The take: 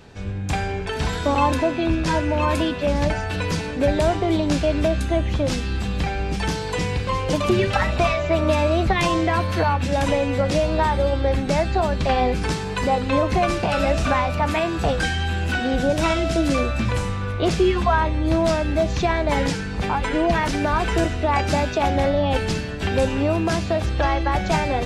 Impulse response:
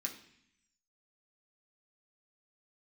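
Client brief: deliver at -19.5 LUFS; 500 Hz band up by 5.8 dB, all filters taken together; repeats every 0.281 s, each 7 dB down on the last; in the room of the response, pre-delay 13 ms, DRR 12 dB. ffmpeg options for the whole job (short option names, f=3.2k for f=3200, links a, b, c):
-filter_complex "[0:a]equalizer=f=500:t=o:g=7.5,aecho=1:1:281|562|843|1124|1405:0.447|0.201|0.0905|0.0407|0.0183,asplit=2[a][b];[1:a]atrim=start_sample=2205,adelay=13[c];[b][c]afir=irnorm=-1:irlink=0,volume=-11.5dB[d];[a][d]amix=inputs=2:normalize=0,volume=-2.5dB"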